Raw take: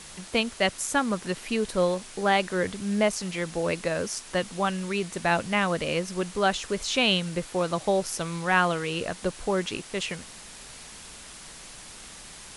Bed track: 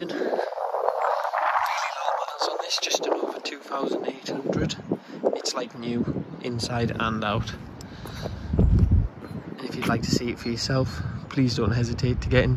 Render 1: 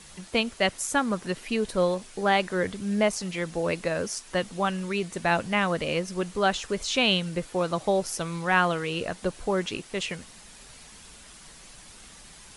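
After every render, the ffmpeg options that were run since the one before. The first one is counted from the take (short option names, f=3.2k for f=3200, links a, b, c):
-af "afftdn=nr=6:nf=-45"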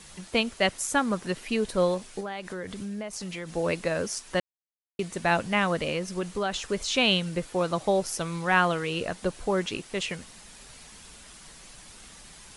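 -filter_complex "[0:a]asettb=1/sr,asplit=3[a][b][c];[a]atrim=end=2.204[d];[b]atrim=start=2.2:end=3.56,asetpts=PTS-STARTPTS,afade=t=in:d=0.004:c=qsin,afade=t=out:st=1.356:d=0.004:c=qsin,acompressor=threshold=-32dB:ratio=6:attack=3.2:release=140:knee=1:detection=peak[e];[c]atrim=start=3.556[f];[d][e]acrossfade=d=0.004:c1=hsin:c2=qsin[g];[g][f]acrossfade=d=0.004:c1=qsin:c2=hsin,asettb=1/sr,asplit=3[h][i][j];[h]atrim=end=5.884[k];[i]atrim=start=5.88:end=6.59,asetpts=PTS-STARTPTS,afade=t=in:d=0.004:c=qsin,afade=t=out:st=0.706:d=0.004:c=qsin,acompressor=threshold=-24dB:ratio=4:attack=3.2:release=140:knee=1:detection=peak[l];[j]atrim=start=6.586[m];[k][l]acrossfade=d=0.004:c1=hsin:c2=qsin[n];[n][m]acrossfade=d=0.004:c1=qsin:c2=hsin,asplit=3[o][p][q];[o]atrim=end=4.4,asetpts=PTS-STARTPTS,afade=t=out:st=4.396:d=0.004:c=hsin[r];[p]atrim=start=4.4:end=4.99,asetpts=PTS-STARTPTS,volume=0[s];[q]atrim=start=4.99,asetpts=PTS-STARTPTS,afade=t=in:d=0.004:c=hsin[t];[r][s][t]concat=n=3:v=0:a=1"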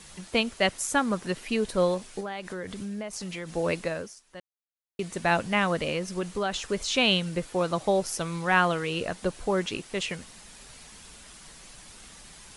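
-filter_complex "[0:a]asplit=3[a][b][c];[a]atrim=end=4.15,asetpts=PTS-STARTPTS,afade=t=out:st=3.78:d=0.37:silence=0.141254[d];[b]atrim=start=4.15:end=4.71,asetpts=PTS-STARTPTS,volume=-17dB[e];[c]atrim=start=4.71,asetpts=PTS-STARTPTS,afade=t=in:d=0.37:silence=0.141254[f];[d][e][f]concat=n=3:v=0:a=1"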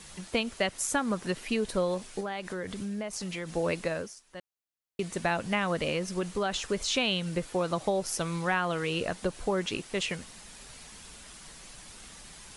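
-af "acompressor=threshold=-24dB:ratio=6"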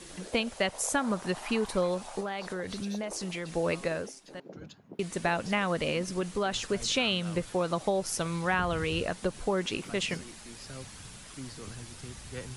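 -filter_complex "[1:a]volume=-21dB[a];[0:a][a]amix=inputs=2:normalize=0"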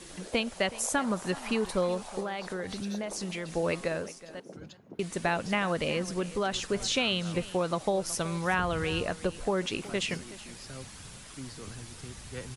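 -af "aecho=1:1:371:0.133"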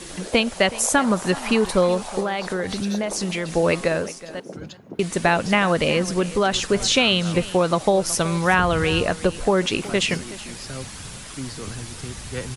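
-af "volume=10dB"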